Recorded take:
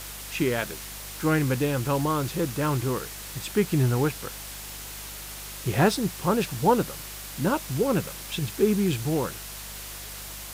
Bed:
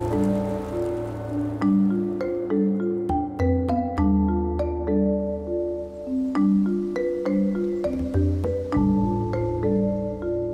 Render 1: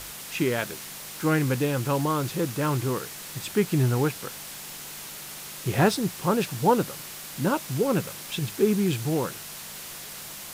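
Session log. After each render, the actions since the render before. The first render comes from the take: de-hum 50 Hz, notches 2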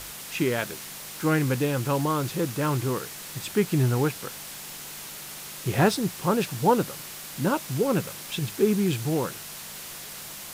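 nothing audible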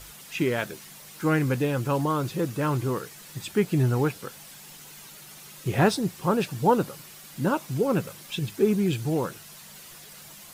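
denoiser 9 dB, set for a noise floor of -40 dBFS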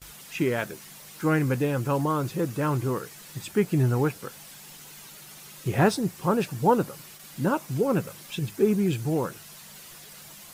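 gate with hold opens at -36 dBFS; dynamic EQ 3600 Hz, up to -4 dB, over -48 dBFS, Q 1.5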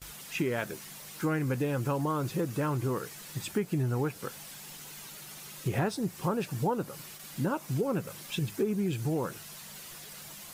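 compressor 4:1, threshold -27 dBFS, peak gain reduction 11 dB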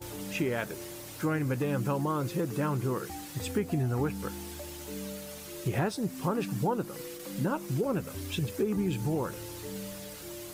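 add bed -18.5 dB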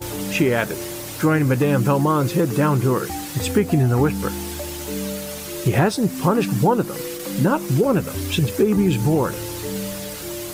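gain +12 dB

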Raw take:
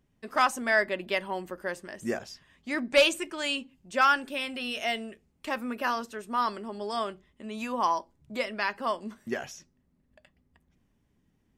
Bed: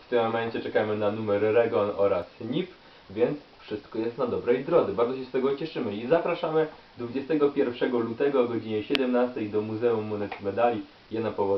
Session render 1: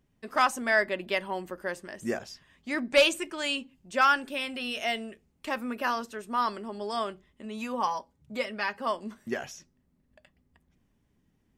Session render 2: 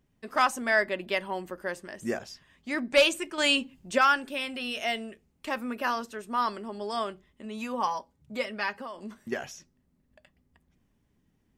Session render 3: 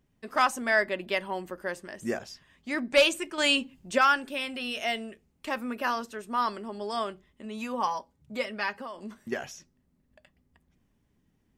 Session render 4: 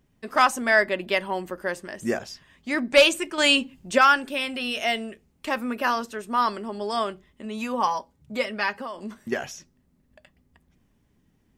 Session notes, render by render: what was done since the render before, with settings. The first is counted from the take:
7.45–8.87 notch comb 340 Hz
3.38–3.98 gain +6.5 dB; 8.7–9.32 compressor 12:1, threshold -34 dBFS
nothing audible
gain +5 dB

